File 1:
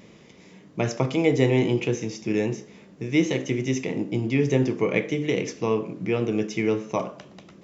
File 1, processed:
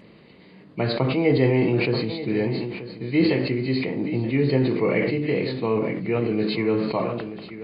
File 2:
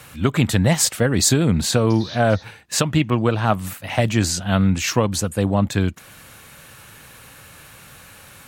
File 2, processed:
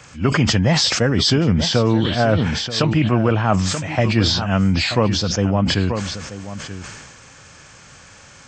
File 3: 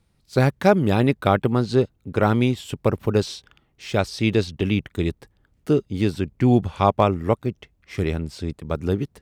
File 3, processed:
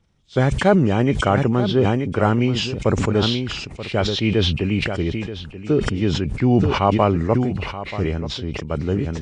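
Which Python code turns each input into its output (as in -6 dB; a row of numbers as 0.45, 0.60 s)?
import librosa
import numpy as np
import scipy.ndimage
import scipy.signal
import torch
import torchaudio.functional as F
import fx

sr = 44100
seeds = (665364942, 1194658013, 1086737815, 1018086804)

y = fx.freq_compress(x, sr, knee_hz=2100.0, ratio=1.5)
y = y + 10.0 ** (-13.5 / 20.0) * np.pad(y, (int(932 * sr / 1000.0), 0))[:len(y)]
y = fx.sustainer(y, sr, db_per_s=35.0)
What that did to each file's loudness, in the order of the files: +1.5, +1.5, +2.0 LU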